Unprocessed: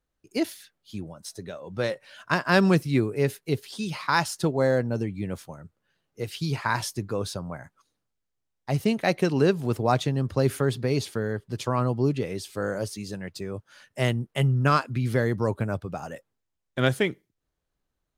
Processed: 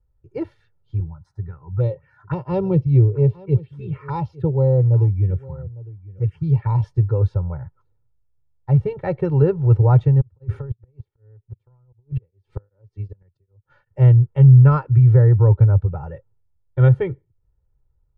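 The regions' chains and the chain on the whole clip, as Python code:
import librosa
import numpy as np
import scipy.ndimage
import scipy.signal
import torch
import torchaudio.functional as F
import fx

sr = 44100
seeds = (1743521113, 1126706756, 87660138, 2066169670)

y = fx.chain(x, sr, fx.highpass(hz=50.0, slope=12),
    fx.env_phaser(low_hz=360.0, high_hz=1600.0, full_db=-23.5),
    fx.echo_single(ms=855, db=-20.5), at=(1.0, 6.84))
y = fx.chain(y, sr, fx.over_compress(threshold_db=-28.0, ratio=-0.5),
    fx.gate_flip(shuts_db=-22.0, range_db=-33),
    fx.tremolo_abs(hz=2.6), at=(10.2, 13.99))
y = scipy.signal.sosfilt(scipy.signal.butter(2, 1000.0, 'lowpass', fs=sr, output='sos'), y)
y = fx.low_shelf_res(y, sr, hz=170.0, db=12.5, q=1.5)
y = y + 0.97 * np.pad(y, (int(2.2 * sr / 1000.0), 0))[:len(y)]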